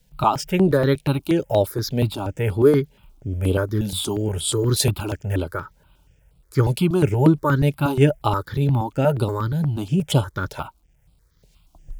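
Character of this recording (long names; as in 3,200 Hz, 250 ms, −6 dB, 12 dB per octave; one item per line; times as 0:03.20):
tremolo triangle 2.1 Hz, depth 40%
a quantiser's noise floor 12 bits, dither none
notches that jump at a steady rate 8.4 Hz 320–6,200 Hz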